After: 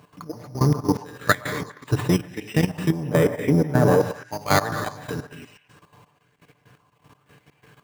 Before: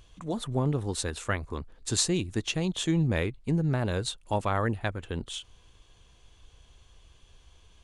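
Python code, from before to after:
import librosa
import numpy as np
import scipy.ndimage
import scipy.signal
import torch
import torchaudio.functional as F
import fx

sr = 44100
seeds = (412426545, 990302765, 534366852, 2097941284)

p1 = fx.octave_divider(x, sr, octaves=1, level_db=0.0)
p2 = fx.rev_gated(p1, sr, seeds[0], gate_ms=260, shape='flat', drr_db=5.5)
p3 = np.repeat(scipy.signal.resample_poly(p2, 1, 8), 8)[:len(p2)]
p4 = fx.graphic_eq_10(p3, sr, hz=(250, 500, 4000), db=(4, 8, -8), at=(2.9, 4.01))
p5 = 10.0 ** (-24.0 / 20.0) * np.tanh(p4 / 10.0 ** (-24.0 / 20.0))
p6 = p4 + (p5 * librosa.db_to_amplitude(-7.0))
p7 = scipy.signal.sosfilt(scipy.signal.butter(4, 110.0, 'highpass', fs=sr, output='sos'), p6)
p8 = p7 + 0.52 * np.pad(p7, (int(6.8 * sr / 1000.0), 0))[:len(p7)]
p9 = fx.step_gate(p8, sr, bpm=124, pattern='xx...x.x..x.xx.x', floor_db=-12.0, edge_ms=4.5)
p10 = fx.echo_stepped(p9, sr, ms=123, hz=850.0, octaves=1.4, feedback_pct=70, wet_db=-8.5)
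p11 = fx.level_steps(p10, sr, step_db=12)
p12 = fx.bell_lfo(p11, sr, hz=1.0, low_hz=950.0, high_hz=2200.0, db=8)
y = p12 * librosa.db_to_amplitude(7.5)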